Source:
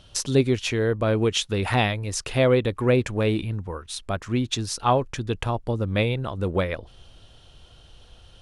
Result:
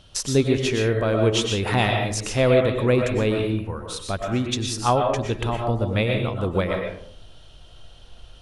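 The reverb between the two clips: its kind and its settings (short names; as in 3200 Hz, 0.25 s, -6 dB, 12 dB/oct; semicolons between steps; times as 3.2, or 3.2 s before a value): digital reverb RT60 0.62 s, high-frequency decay 0.45×, pre-delay 80 ms, DRR 2 dB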